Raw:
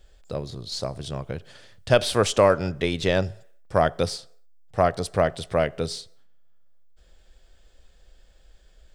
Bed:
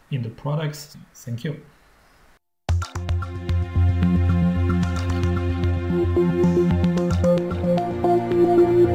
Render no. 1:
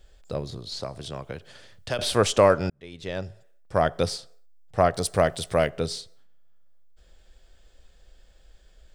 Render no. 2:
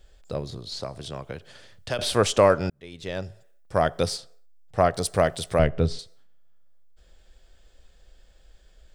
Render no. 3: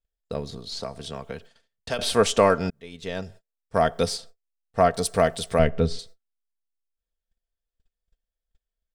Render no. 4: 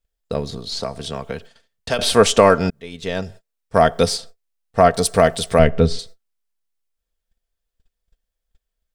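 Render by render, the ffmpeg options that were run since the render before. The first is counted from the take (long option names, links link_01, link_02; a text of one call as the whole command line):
ffmpeg -i in.wav -filter_complex "[0:a]asettb=1/sr,asplit=3[link_01][link_02][link_03];[link_01]atrim=end=0.574[link_04];[link_02]atrim=start=0.57:end=1.99,asetpts=PTS-STARTPTS,afade=type=in:duration=0.004:curve=qsin,afade=type=out:start_time=1.416:duration=0.004:curve=qsin,acrossover=split=280|780|4300[link_05][link_06][link_07][link_08];[link_05]acompressor=threshold=-40dB:ratio=3[link_09];[link_06]acompressor=threshold=-36dB:ratio=3[link_10];[link_07]acompressor=threshold=-34dB:ratio=3[link_11];[link_08]acompressor=threshold=-43dB:ratio=3[link_12];[link_09][link_10][link_11][link_12]amix=inputs=4:normalize=0[link_13];[link_03]atrim=start=1.986[link_14];[link_04][link_13]acrossfade=duration=0.004:curve1=hsin:curve2=qsin[link_15];[link_15][link_14]acrossfade=duration=0.004:curve1=qsin:curve2=hsin,asettb=1/sr,asplit=3[link_16][link_17][link_18];[link_16]atrim=end=4.954[link_19];[link_17]atrim=start=4.95:end=5.7,asetpts=PTS-STARTPTS,afade=type=in:duration=0.004:curve=qsin,afade=type=out:start_time=0.746:duration=0.004:curve=qsin,highshelf=frequency=6300:gain=11.5[link_20];[link_18]atrim=start=5.696[link_21];[link_19][link_20]acrossfade=duration=0.004:curve1=hsin:curve2=qsin[link_22];[link_22][link_21]acrossfade=duration=0.004:curve1=qsin:curve2=hsin,asplit=2[link_23][link_24];[link_23]atrim=end=2.7,asetpts=PTS-STARTPTS,afade=type=out:start_time=2.696:duration=0.004:curve=hsin[link_25];[link_24]atrim=start=2.7,asetpts=PTS-STARTPTS,afade=type=in:duration=1.38[link_26];[link_25][link_26]concat=n=2:v=0:a=1" out.wav
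ffmpeg -i in.wav -filter_complex "[0:a]asettb=1/sr,asplit=3[link_01][link_02][link_03];[link_01]atrim=end=2.724[link_04];[link_02]atrim=start=2.72:end=4.17,asetpts=PTS-STARTPTS,afade=type=in:duration=0.004:curve=qsin,afade=type=out:start_time=1.446:duration=0.004:curve=qsin,highshelf=frequency=6900:gain=4.5[link_05];[link_03]atrim=start=4.166[link_06];[link_04][link_05]acrossfade=duration=0.004:curve1=hsin:curve2=qsin[link_07];[link_07][link_06]acrossfade=duration=0.004:curve1=qsin:curve2=hsin,asettb=1/sr,asplit=3[link_08][link_09][link_10];[link_08]atrim=end=5.594[link_11];[link_09]atrim=start=5.59:end=5.99,asetpts=PTS-STARTPTS,afade=type=in:duration=0.004:curve=qsin,afade=type=out:start_time=0.396:duration=0.004:curve=qsin,aemphasis=mode=reproduction:type=bsi[link_12];[link_10]atrim=start=5.986[link_13];[link_11][link_12]acrossfade=duration=0.004:curve1=hsin:curve2=qsin[link_14];[link_14][link_13]acrossfade=duration=0.004:curve1=qsin:curve2=hsin" out.wav
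ffmpeg -i in.wav -af "agate=range=-35dB:threshold=-44dB:ratio=16:detection=peak,aecho=1:1:4.4:0.48" out.wav
ffmpeg -i in.wav -af "volume=7dB,alimiter=limit=-1dB:level=0:latency=1" out.wav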